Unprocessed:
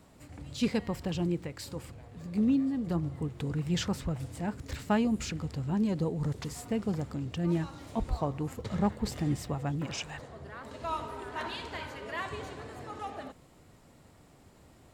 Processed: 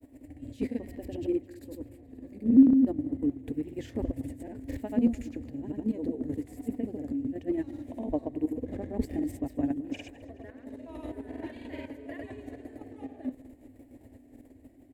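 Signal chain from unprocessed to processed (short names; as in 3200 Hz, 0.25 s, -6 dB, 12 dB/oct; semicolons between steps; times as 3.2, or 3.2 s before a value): EQ curve 110 Hz 0 dB, 180 Hz -23 dB, 260 Hz +14 dB, 380 Hz 0 dB, 620 Hz 0 dB, 1300 Hz -23 dB, 1800 Hz -4 dB, 3200 Hz -13 dB, 5300 Hz -17 dB, 13000 Hz 0 dB; reverse; upward compressor, threshold -45 dBFS; reverse; chopper 6.2 Hz, depth 60%, duty 35%; vibrato 1.1 Hz 26 cents; grains, pitch spread up and down by 0 st; feedback echo 0.212 s, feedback 57%, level -20.5 dB; gain +3.5 dB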